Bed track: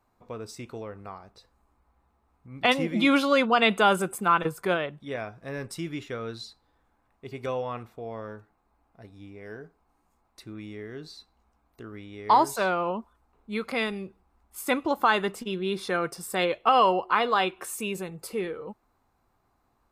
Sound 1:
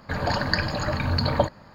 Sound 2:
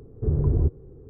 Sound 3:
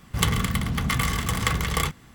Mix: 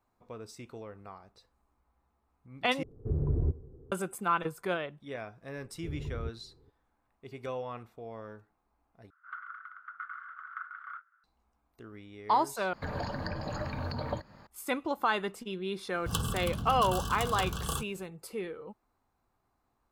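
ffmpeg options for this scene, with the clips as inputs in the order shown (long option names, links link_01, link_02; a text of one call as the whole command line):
ffmpeg -i bed.wav -i cue0.wav -i cue1.wav -i cue2.wav -filter_complex "[2:a]asplit=2[link_01][link_02];[3:a]asplit=2[link_03][link_04];[0:a]volume=-6.5dB[link_05];[link_01]aecho=1:1:87|174|261|348:0.0841|0.0446|0.0236|0.0125[link_06];[link_03]asuperpass=centerf=1400:order=4:qfactor=6.5[link_07];[1:a]acrossover=split=380|1000[link_08][link_09][link_10];[link_08]acompressor=threshold=-31dB:ratio=4[link_11];[link_09]acompressor=threshold=-33dB:ratio=4[link_12];[link_10]acompressor=threshold=-40dB:ratio=4[link_13];[link_11][link_12][link_13]amix=inputs=3:normalize=0[link_14];[link_04]asuperstop=centerf=2100:order=20:qfactor=2.2[link_15];[link_05]asplit=4[link_16][link_17][link_18][link_19];[link_16]atrim=end=2.834[link_20];[link_06]atrim=end=1.09,asetpts=PTS-STARTPTS,volume=-7.5dB[link_21];[link_17]atrim=start=3.916:end=9.104[link_22];[link_07]atrim=end=2.14,asetpts=PTS-STARTPTS,volume=-2dB[link_23];[link_18]atrim=start=11.236:end=12.734[link_24];[link_14]atrim=end=1.74,asetpts=PTS-STARTPTS,volume=-5dB[link_25];[link_19]atrim=start=14.466[link_26];[link_02]atrim=end=1.09,asetpts=PTS-STARTPTS,volume=-16.5dB,afade=type=in:duration=0.004:curve=hsin,afade=type=out:start_time=1.086:duration=0.004:curve=hsin,adelay=247401S[link_27];[link_15]atrim=end=2.14,asetpts=PTS-STARTPTS,volume=-9.5dB,afade=type=in:duration=0.004:curve=hsin,afade=type=out:start_time=2.136:duration=0.004:curve=hsin,adelay=15920[link_28];[link_20][link_21]acrossfade=duration=0.004:curve1=hsin:curve2=hsin[link_29];[link_29][link_22]acrossfade=duration=0.004:curve1=hsin:curve2=hsin[link_30];[link_30][link_23]acrossfade=duration=0.004:curve1=hsin:curve2=hsin[link_31];[link_31][link_24]acrossfade=duration=0.004:curve1=hsin:curve2=hsin[link_32];[link_32][link_25]acrossfade=duration=0.004:curve1=hsin:curve2=hsin[link_33];[link_33][link_26]acrossfade=duration=0.004:curve1=hsin:curve2=hsin[link_34];[link_34][link_27][link_28]amix=inputs=3:normalize=0" out.wav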